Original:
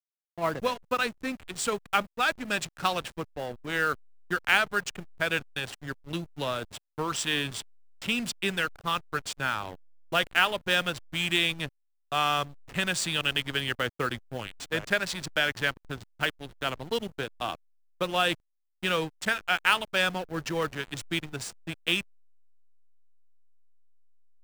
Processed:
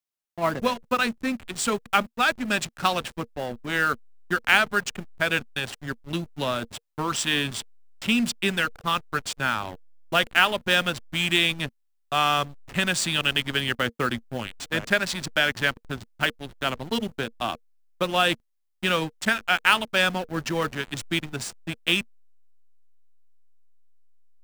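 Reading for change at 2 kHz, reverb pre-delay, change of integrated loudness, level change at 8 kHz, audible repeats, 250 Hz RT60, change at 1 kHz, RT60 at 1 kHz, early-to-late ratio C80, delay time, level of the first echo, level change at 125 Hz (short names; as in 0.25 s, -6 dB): +4.0 dB, none, +4.0 dB, +4.0 dB, none, none, +4.0 dB, none, none, none, none, +4.5 dB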